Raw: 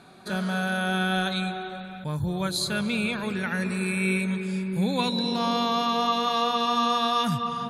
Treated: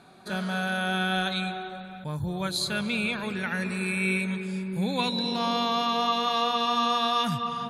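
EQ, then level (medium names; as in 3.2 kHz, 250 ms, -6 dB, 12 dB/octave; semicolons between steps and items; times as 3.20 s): dynamic bell 2.7 kHz, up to +4 dB, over -39 dBFS, Q 0.84; peaking EQ 770 Hz +2 dB; -3.0 dB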